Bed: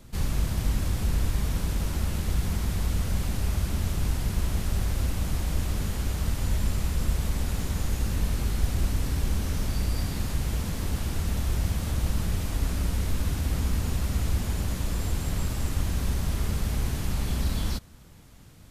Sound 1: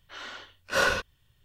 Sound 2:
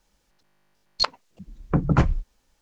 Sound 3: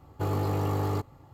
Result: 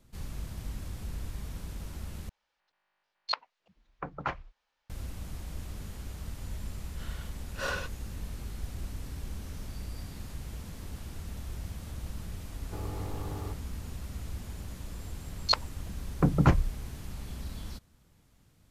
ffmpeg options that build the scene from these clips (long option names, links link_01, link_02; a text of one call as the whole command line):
ffmpeg -i bed.wav -i cue0.wav -i cue1.wav -i cue2.wav -filter_complex "[2:a]asplit=2[link_01][link_02];[0:a]volume=-12.5dB[link_03];[link_01]acrossover=split=590 4500:gain=0.112 1 0.1[link_04][link_05][link_06];[link_04][link_05][link_06]amix=inputs=3:normalize=0[link_07];[link_03]asplit=2[link_08][link_09];[link_08]atrim=end=2.294[link_10];[link_07]atrim=end=2.61,asetpts=PTS-STARTPTS,volume=-5.5dB[link_11];[link_09]atrim=start=4.896[link_12];[1:a]atrim=end=1.44,asetpts=PTS-STARTPTS,volume=-10dB,afade=type=in:duration=0.004:curve=hsin,afade=type=out:start_time=1.436:duration=0.004:curve=hsin,adelay=6860[link_13];[3:a]atrim=end=1.33,asetpts=PTS-STARTPTS,volume=-11.5dB,afade=type=in:duration=0.004:curve=hsin,afade=type=out:start_time=1.326:duration=0.004:curve=hsin,adelay=552132S[link_14];[link_02]atrim=end=2.61,asetpts=PTS-STARTPTS,volume=-3dB,afade=type=in:duration=0.004:curve=hsin,afade=type=out:start_time=2.606:duration=0.004:curve=hsin,adelay=14490[link_15];[link_10][link_11]acrossfade=duration=0.004:curve1=hsin:curve2=hsin[link_16];[link_16][link_12]acrossfade=duration=0.004:curve1=hsin:curve2=hsin[link_17];[link_17][link_13][link_14][link_15]amix=inputs=4:normalize=0" out.wav